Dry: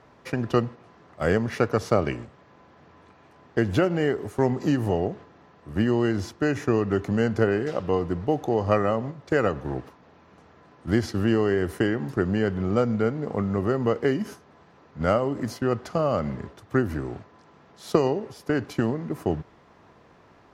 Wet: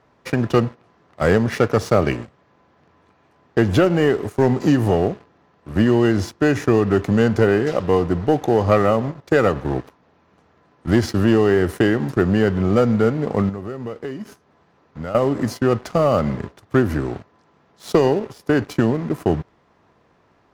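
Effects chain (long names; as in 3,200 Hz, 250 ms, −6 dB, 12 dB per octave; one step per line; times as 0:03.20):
leveller curve on the samples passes 2
0:13.49–0:15.15: downward compressor 3 to 1, threshold −31 dBFS, peak gain reduction 14.5 dB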